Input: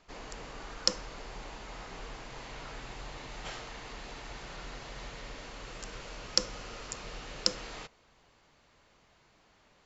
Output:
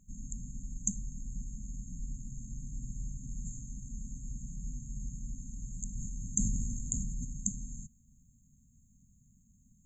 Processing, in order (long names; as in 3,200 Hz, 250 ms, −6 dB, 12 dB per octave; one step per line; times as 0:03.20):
linear-phase brick-wall band-stop 260–6,300 Hz
0:05.89–0:07.25: level that may fall only so fast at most 21 dB per second
level +7.5 dB